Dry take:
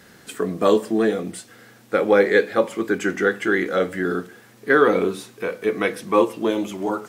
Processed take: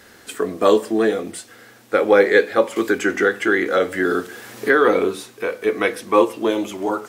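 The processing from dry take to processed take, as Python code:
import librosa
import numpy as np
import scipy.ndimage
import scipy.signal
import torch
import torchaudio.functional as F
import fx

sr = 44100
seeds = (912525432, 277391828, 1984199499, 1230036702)

y = fx.peak_eq(x, sr, hz=160.0, db=-13.0, octaves=0.69)
y = fx.band_squash(y, sr, depth_pct=70, at=(2.76, 4.85))
y = y * librosa.db_to_amplitude(3.0)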